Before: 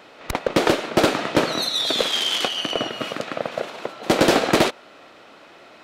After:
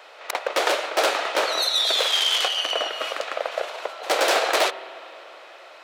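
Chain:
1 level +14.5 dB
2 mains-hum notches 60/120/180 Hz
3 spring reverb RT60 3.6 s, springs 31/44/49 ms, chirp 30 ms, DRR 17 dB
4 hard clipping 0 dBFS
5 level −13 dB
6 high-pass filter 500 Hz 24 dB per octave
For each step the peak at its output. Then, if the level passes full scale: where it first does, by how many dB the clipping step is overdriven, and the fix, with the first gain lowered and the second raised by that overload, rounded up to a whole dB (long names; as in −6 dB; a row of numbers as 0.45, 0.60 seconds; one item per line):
+4.5, +6.0, +6.5, 0.0, −13.0, −6.0 dBFS
step 1, 6.5 dB
step 1 +7.5 dB, step 5 −6 dB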